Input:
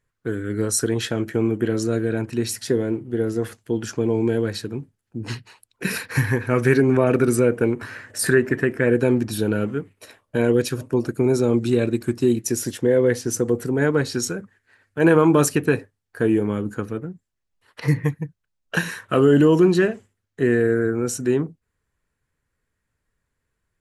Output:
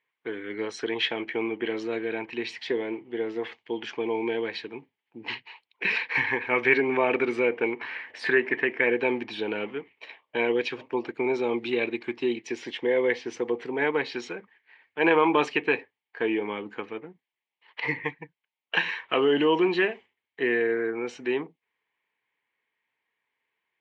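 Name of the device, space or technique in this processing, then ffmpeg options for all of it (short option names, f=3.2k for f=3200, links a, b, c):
phone earpiece: -af "highpass=500,equalizer=f=580:t=q:w=4:g=-7,equalizer=f=890:t=q:w=4:g=6,equalizer=f=1.4k:t=q:w=4:g=-10,equalizer=f=2.2k:t=q:w=4:g=10,equalizer=f=3.1k:t=q:w=4:g=6,lowpass=f=3.6k:w=0.5412,lowpass=f=3.6k:w=1.3066"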